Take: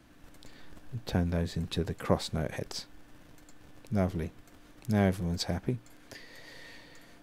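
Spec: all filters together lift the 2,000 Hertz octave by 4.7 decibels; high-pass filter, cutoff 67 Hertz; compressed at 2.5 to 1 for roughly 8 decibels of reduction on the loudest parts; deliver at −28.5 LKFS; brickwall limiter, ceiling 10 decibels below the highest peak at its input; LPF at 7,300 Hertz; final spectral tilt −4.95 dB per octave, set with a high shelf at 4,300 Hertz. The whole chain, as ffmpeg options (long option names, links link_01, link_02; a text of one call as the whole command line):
ffmpeg -i in.wav -af "highpass=67,lowpass=7300,equalizer=frequency=2000:width_type=o:gain=7,highshelf=frequency=4300:gain=-5.5,acompressor=threshold=-31dB:ratio=2.5,volume=11.5dB,alimiter=limit=-13.5dB:level=0:latency=1" out.wav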